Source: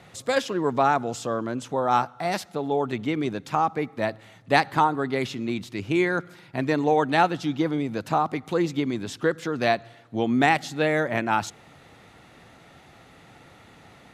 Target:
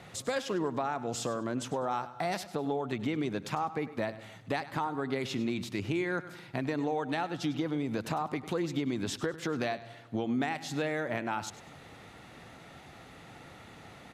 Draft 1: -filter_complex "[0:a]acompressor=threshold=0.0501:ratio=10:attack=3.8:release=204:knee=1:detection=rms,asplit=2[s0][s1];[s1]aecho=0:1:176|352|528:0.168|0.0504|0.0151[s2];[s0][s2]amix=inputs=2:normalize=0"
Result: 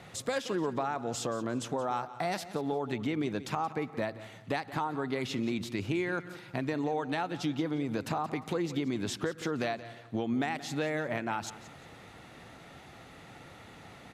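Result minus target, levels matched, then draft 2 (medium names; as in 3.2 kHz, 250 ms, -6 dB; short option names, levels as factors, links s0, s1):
echo 76 ms late
-filter_complex "[0:a]acompressor=threshold=0.0501:ratio=10:attack=3.8:release=204:knee=1:detection=rms,asplit=2[s0][s1];[s1]aecho=0:1:100|200|300:0.168|0.0504|0.0151[s2];[s0][s2]amix=inputs=2:normalize=0"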